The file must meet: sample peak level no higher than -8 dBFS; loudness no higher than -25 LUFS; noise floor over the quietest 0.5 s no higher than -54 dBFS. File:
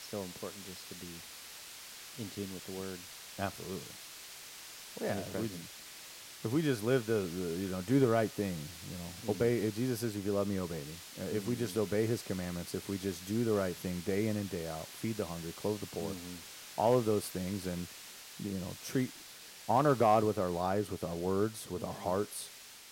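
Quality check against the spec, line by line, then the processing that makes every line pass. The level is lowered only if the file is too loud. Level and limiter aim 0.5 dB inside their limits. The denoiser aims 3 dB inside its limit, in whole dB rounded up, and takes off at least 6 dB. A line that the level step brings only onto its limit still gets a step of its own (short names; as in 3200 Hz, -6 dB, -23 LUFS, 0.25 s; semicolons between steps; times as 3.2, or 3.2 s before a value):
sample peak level -16.0 dBFS: OK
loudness -35.0 LUFS: OK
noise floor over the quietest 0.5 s -51 dBFS: fail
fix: denoiser 6 dB, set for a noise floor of -51 dBFS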